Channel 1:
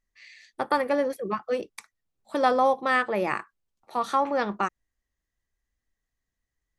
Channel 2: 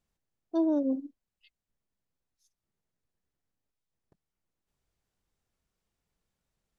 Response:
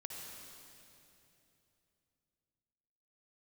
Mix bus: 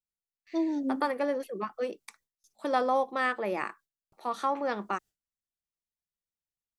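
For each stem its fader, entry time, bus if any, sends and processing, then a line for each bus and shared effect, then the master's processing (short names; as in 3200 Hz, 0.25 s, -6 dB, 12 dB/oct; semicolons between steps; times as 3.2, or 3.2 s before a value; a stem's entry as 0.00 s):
-4.5 dB, 0.30 s, no send, Chebyshev high-pass 230 Hz, order 2
-0.5 dB, 0.00 s, no send, high shelf 3200 Hz +10 dB; cascading phaser falling 1.9 Hz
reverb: off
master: gate with hold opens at -54 dBFS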